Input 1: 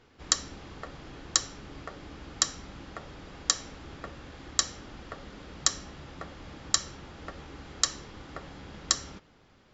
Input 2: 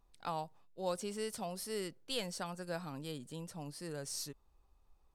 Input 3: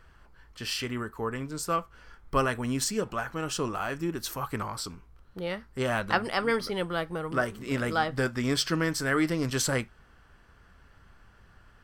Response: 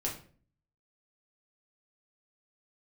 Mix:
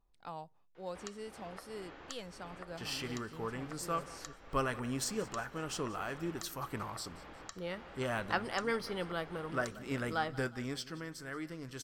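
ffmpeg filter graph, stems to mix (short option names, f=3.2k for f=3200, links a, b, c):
-filter_complex "[0:a]acrossover=split=380 2900:gain=0.224 1 0.224[a][b][c];[a][b][c]amix=inputs=3:normalize=0,acompressor=threshold=-45dB:ratio=8,adelay=750,volume=-1dB[d];[1:a]highshelf=f=4.7k:g=-10,volume=-5.5dB[e];[2:a]adelay=2200,volume=-7.5dB,afade=t=out:st=10.39:d=0.47:silence=0.354813,asplit=2[f][g];[g]volume=-19dB,aecho=0:1:180|360|540|720|900|1080|1260|1440:1|0.53|0.281|0.149|0.0789|0.0418|0.0222|0.0117[h];[d][e][f][h]amix=inputs=4:normalize=0"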